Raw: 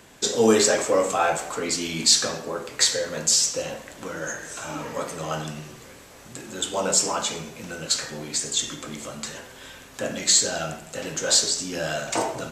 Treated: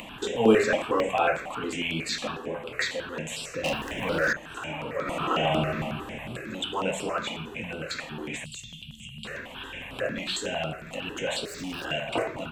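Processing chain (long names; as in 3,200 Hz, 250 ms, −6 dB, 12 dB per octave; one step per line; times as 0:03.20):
high shelf with overshoot 3,800 Hz −11.5 dB, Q 3
0:03.64–0:04.33: leveller curve on the samples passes 3
0:11.45–0:11.85: hard clipping −34 dBFS, distortion −23 dB
upward compression, threshold −27 dBFS
0:05.01–0:05.75: thrown reverb, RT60 1.8 s, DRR −7 dB
0:08.44–0:09.25: Chebyshev band-stop filter 190–2,800 Hz, order 4
step-sequenced phaser 11 Hz 410–6,500 Hz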